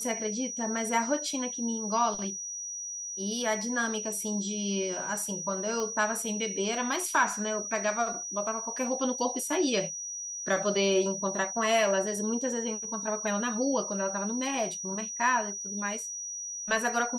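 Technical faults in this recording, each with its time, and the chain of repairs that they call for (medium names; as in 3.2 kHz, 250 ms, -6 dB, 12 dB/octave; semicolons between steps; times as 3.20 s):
whine 5.8 kHz -35 dBFS
5.80 s: pop -22 dBFS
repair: de-click; band-stop 5.8 kHz, Q 30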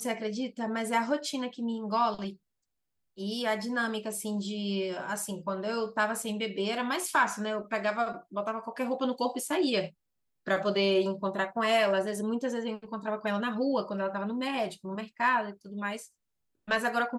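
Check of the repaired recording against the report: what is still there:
nothing left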